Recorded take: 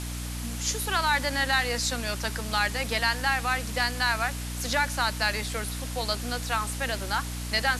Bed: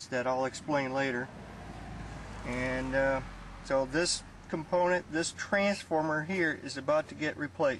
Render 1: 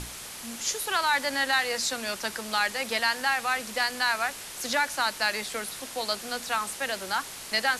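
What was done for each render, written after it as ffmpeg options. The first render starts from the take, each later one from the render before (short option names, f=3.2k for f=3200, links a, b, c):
-af "bandreject=f=60:t=h:w=6,bandreject=f=120:t=h:w=6,bandreject=f=180:t=h:w=6,bandreject=f=240:t=h:w=6,bandreject=f=300:t=h:w=6"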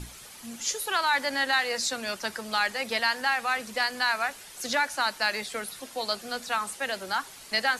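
-af "afftdn=nr=9:nf=-41"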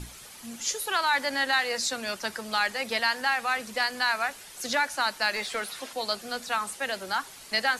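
-filter_complex "[0:a]asettb=1/sr,asplit=3[a][b][c];[a]atrim=end=5.364[d];[b]atrim=start=5.36:end=5.93,asetpts=PTS-STARTPTS,afade=t=in:d=0.004:c=qsin,afade=t=out:st=0.566:d=0.004:c=qsin,asplit=2[e][f];[f]highpass=f=720:p=1,volume=12dB,asoftclip=type=tanh:threshold=-21dB[g];[e][g]amix=inputs=2:normalize=0,lowpass=f=4.1k:p=1,volume=-6dB[h];[c]atrim=start=5.926[i];[d][h]acrossfade=d=0.004:c1=hsin:c2=qsin[j];[j][i]acrossfade=d=0.004:c1=qsin:c2=hsin"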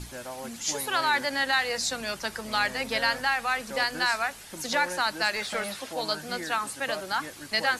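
-filter_complex "[1:a]volume=-8.5dB[a];[0:a][a]amix=inputs=2:normalize=0"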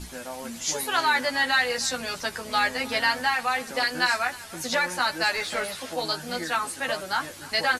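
-filter_complex "[0:a]asplit=2[a][b];[b]adelay=12,volume=-2.5dB[c];[a][c]amix=inputs=2:normalize=0,aecho=1:1:305:0.1"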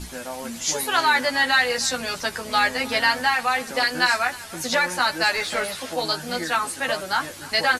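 -af "volume=3.5dB"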